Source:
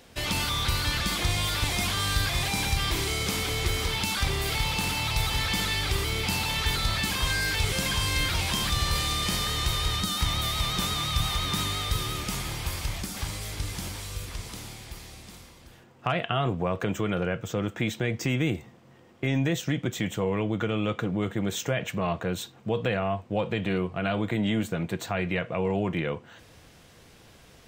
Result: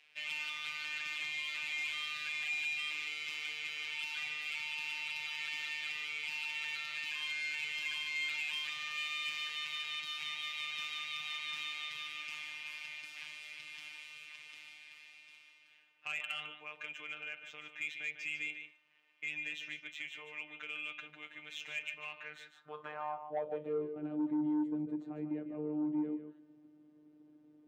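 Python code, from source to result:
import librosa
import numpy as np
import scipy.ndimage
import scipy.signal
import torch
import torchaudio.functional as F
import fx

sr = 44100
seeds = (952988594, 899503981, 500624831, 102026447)

p1 = fx.robotise(x, sr, hz=151.0)
p2 = fx.filter_sweep_bandpass(p1, sr, from_hz=2500.0, to_hz=300.0, start_s=22.1, end_s=24.09, q=4.9)
p3 = p2 + fx.echo_single(p2, sr, ms=149, db=-9.5, dry=0)
p4 = fx.cheby_harmonics(p3, sr, harmonics=(5,), levels_db=(-19,), full_scale_db=-23.0)
y = p4 * librosa.db_to_amplitude(-1.5)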